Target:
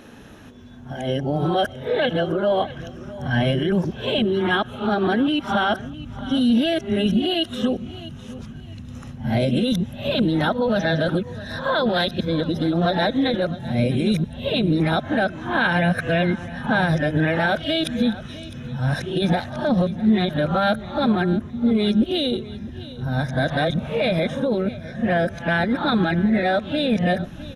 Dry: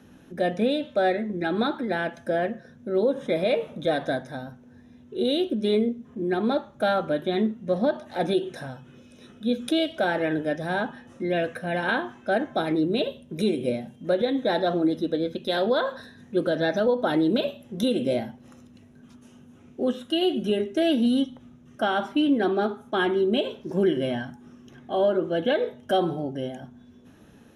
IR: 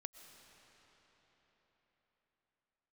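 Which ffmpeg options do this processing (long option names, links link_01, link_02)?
-filter_complex "[0:a]areverse,alimiter=limit=-21dB:level=0:latency=1:release=99,lowshelf=frequency=460:gain=-6,aecho=1:1:657|1314|1971:0.141|0.0381|0.0103,asubboost=boost=9.5:cutoff=120,asplit=2[link_01][link_02];[1:a]atrim=start_sample=2205,atrim=end_sample=6174,lowpass=6900[link_03];[link_02][link_03]afir=irnorm=-1:irlink=0,volume=0.5dB[link_04];[link_01][link_04]amix=inputs=2:normalize=0,volume=8.5dB"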